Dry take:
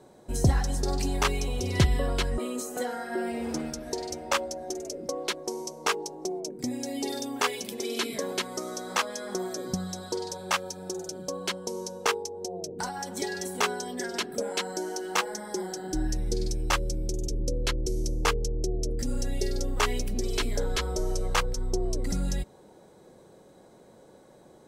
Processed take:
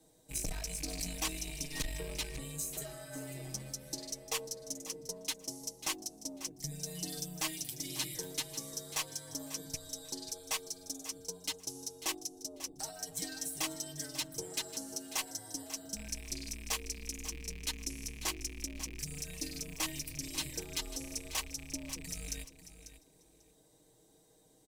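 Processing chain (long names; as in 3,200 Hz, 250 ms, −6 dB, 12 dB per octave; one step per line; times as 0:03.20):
loose part that buzzes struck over −27 dBFS, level −27 dBFS
frequency shifter −100 Hz
parametric band 1,400 Hz −13 dB 0.22 octaves
comb filter 6.4 ms, depth 80%
tube saturation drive 18 dB, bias 0.5
first-order pre-emphasis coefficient 0.8
on a send: repeating echo 543 ms, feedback 16%, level −13 dB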